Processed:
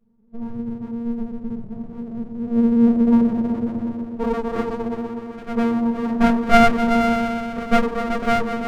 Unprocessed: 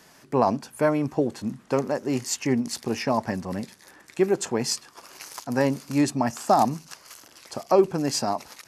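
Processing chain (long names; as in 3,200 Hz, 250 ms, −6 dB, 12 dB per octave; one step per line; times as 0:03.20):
low-pass filter sweep 140 Hz → 780 Hz, 0:01.53–0:04.72
phases set to zero 232 Hz
echo whose low-pass opens from repeat to repeat 124 ms, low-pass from 200 Hz, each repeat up 1 octave, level 0 dB
rectangular room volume 530 cubic metres, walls furnished, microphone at 5.1 metres
windowed peak hold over 33 samples
level −3.5 dB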